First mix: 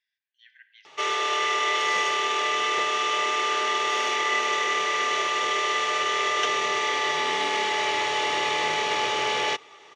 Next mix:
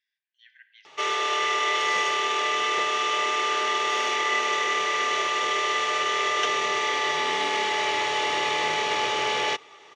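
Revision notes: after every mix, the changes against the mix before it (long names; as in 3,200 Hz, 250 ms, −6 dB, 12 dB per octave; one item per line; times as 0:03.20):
master: add high-shelf EQ 12,000 Hz −3 dB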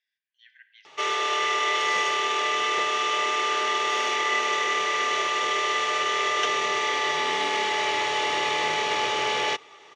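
nothing changed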